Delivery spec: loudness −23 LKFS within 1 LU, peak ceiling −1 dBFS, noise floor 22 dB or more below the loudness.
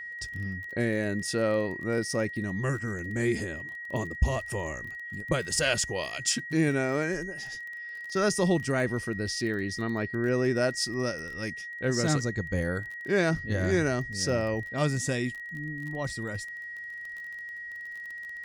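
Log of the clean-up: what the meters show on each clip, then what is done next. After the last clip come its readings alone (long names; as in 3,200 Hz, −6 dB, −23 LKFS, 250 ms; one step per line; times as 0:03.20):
crackle rate 25 per second; interfering tone 1,900 Hz; level of the tone −37 dBFS; integrated loudness −30.0 LKFS; sample peak −13.0 dBFS; target loudness −23.0 LKFS
→ click removal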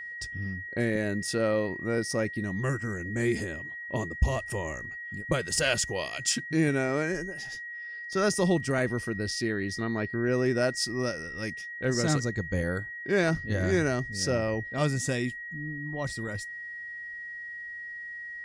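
crackle rate 0.11 per second; interfering tone 1,900 Hz; level of the tone −37 dBFS
→ notch filter 1,900 Hz, Q 30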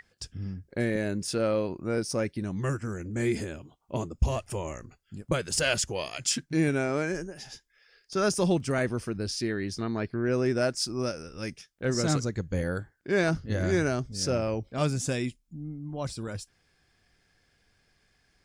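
interfering tone none found; integrated loudness −30.0 LKFS; sample peak −13.0 dBFS; target loudness −23.0 LKFS
→ level +7 dB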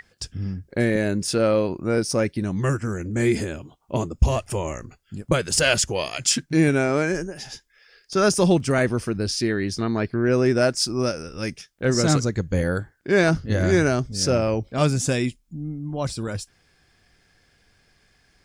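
integrated loudness −23.0 LKFS; sample peak −6.0 dBFS; background noise floor −63 dBFS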